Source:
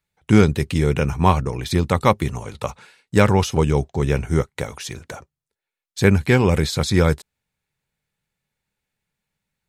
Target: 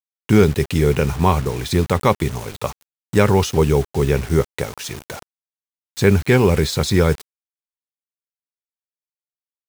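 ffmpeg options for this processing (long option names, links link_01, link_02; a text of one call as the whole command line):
ffmpeg -i in.wav -filter_complex "[0:a]adynamicequalizer=threshold=0.02:dfrequency=410:dqfactor=6.2:tfrequency=410:tqfactor=6.2:attack=5:release=100:ratio=0.375:range=3:mode=boostabove:tftype=bell,asplit=2[link_01][link_02];[link_02]alimiter=limit=-7.5dB:level=0:latency=1:release=26,volume=0dB[link_03];[link_01][link_03]amix=inputs=2:normalize=0,acrusher=bits=4:mix=0:aa=0.000001,volume=-4.5dB" out.wav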